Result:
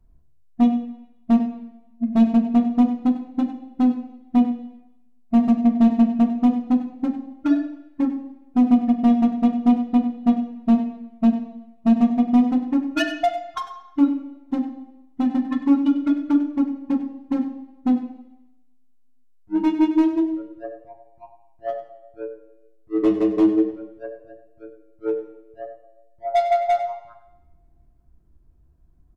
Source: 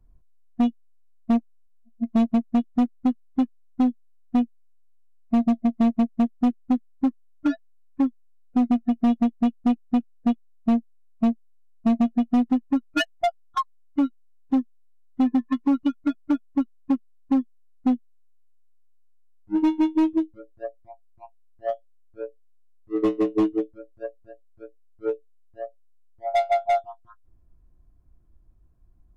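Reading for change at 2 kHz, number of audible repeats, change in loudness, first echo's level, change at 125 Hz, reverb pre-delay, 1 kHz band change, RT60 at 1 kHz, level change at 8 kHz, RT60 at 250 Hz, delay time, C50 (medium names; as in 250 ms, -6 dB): +1.5 dB, 1, +3.5 dB, -13.0 dB, no reading, 3 ms, +2.5 dB, 0.85 s, no reading, 0.90 s, 97 ms, 8.0 dB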